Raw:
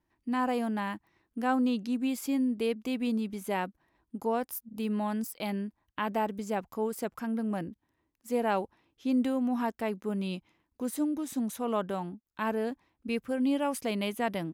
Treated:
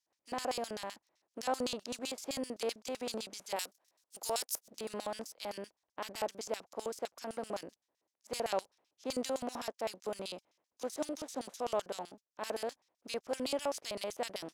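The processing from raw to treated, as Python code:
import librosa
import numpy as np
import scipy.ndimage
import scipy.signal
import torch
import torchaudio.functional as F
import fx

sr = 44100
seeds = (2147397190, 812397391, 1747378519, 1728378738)

y = fx.spec_flatten(x, sr, power=0.57)
y = fx.riaa(y, sr, side='recording', at=(3.56, 4.7))
y = fx.filter_lfo_bandpass(y, sr, shape='square', hz=7.8, low_hz=590.0, high_hz=5700.0, q=2.1)
y = y * 10.0 ** (1.5 / 20.0)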